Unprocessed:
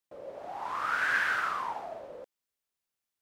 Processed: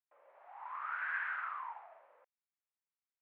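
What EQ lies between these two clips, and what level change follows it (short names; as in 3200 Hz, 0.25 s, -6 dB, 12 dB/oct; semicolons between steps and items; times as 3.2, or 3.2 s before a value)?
Chebyshev band-pass 940–2300 Hz, order 2; air absorption 180 m; -7.5 dB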